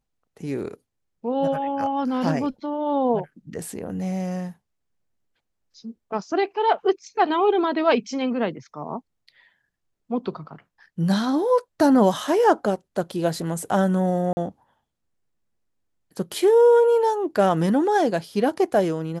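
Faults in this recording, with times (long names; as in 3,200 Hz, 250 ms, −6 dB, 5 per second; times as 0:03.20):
0:14.33–0:14.37: drop-out 40 ms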